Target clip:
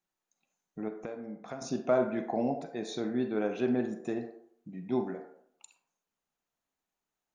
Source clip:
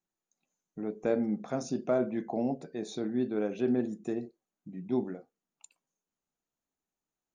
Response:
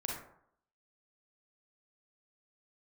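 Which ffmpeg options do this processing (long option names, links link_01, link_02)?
-filter_complex "[0:a]asettb=1/sr,asplit=3[link_01][link_02][link_03];[link_01]atrim=end=0.884[link_04];[link_02]atrim=start=0.88:end=1.62,asetpts=PTS-STARTPTS,afade=type=in:duration=0.004:curve=qsin,afade=type=out:start_time=0.736:duration=0.004:curve=qsin,acompressor=threshold=-38dB:ratio=12[link_05];[link_03]atrim=start=1.616[link_06];[link_04][link_05]acrossfade=duration=0.004:curve1=hsin:curve2=qsin[link_07];[link_07][link_06]acrossfade=duration=0.004:curve1=qsin:curve2=hsin,asplit=2[link_08][link_09];[link_09]highpass=500,lowpass=5600[link_10];[1:a]atrim=start_sample=2205[link_11];[link_10][link_11]afir=irnorm=-1:irlink=0,volume=-2.5dB[link_12];[link_08][link_12]amix=inputs=2:normalize=0"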